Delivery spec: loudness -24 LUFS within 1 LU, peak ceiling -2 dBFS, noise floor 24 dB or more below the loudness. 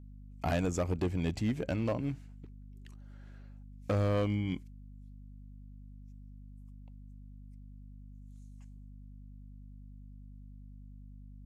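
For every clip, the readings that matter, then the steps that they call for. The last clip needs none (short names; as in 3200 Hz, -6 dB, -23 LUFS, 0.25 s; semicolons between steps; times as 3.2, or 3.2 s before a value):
clipped 1.0%; flat tops at -25.0 dBFS; hum 50 Hz; harmonics up to 250 Hz; hum level -47 dBFS; loudness -33.5 LUFS; peak -25.0 dBFS; loudness target -24.0 LUFS
-> clip repair -25 dBFS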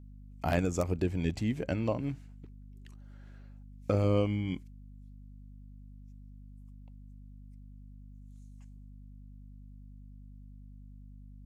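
clipped 0.0%; hum 50 Hz; harmonics up to 250 Hz; hum level -46 dBFS
-> de-hum 50 Hz, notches 5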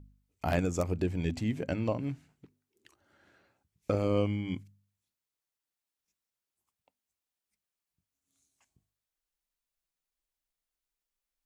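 hum none; loudness -32.5 LUFS; peak -16.0 dBFS; loudness target -24.0 LUFS
-> gain +8.5 dB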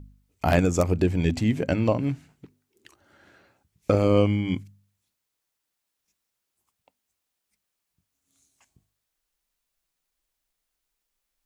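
loudness -24.0 LUFS; peak -7.5 dBFS; noise floor -82 dBFS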